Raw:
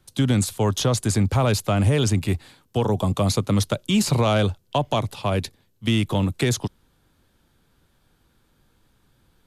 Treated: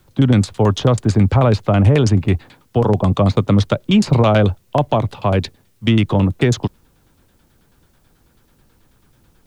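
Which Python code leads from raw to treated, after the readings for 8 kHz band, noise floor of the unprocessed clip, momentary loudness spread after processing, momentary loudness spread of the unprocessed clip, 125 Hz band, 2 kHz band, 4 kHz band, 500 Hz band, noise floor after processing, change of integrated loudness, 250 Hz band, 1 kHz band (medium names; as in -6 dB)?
-5.5 dB, -65 dBFS, 8 LU, 8 LU, +7.0 dB, +4.0 dB, +1.0 dB, +6.5 dB, -58 dBFS, +6.5 dB, +7.0 dB, +5.5 dB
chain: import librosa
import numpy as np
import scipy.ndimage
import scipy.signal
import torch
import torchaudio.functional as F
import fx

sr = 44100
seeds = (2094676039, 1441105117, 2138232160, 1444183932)

y = fx.filter_lfo_lowpass(x, sr, shape='saw_down', hz=9.2, low_hz=520.0, high_hz=6400.0, q=0.73)
y = fx.quant_dither(y, sr, seeds[0], bits=12, dither='triangular')
y = y * librosa.db_to_amplitude(7.0)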